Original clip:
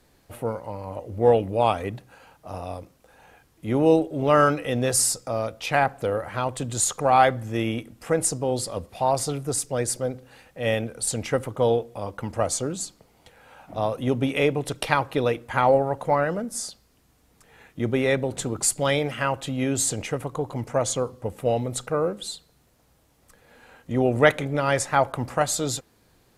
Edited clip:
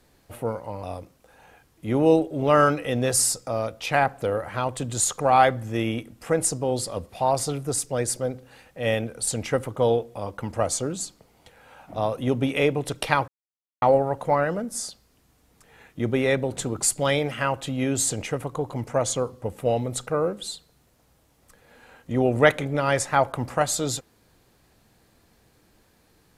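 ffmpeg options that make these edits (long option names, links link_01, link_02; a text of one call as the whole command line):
ffmpeg -i in.wav -filter_complex "[0:a]asplit=4[link_01][link_02][link_03][link_04];[link_01]atrim=end=0.832[link_05];[link_02]atrim=start=2.628:end=15.08,asetpts=PTS-STARTPTS,afade=type=out:start_time=12.448:duration=0.004:curve=hsin[link_06];[link_03]atrim=start=15.08:end=15.62,asetpts=PTS-STARTPTS,volume=0[link_07];[link_04]atrim=start=15.62,asetpts=PTS-STARTPTS,afade=type=in:duration=0.004:curve=hsin[link_08];[link_06][link_07][link_08]concat=n=3:v=0:a=1[link_09];[link_05][link_09]acrossfade=duration=0.004:curve1=hsin:curve2=hsin" out.wav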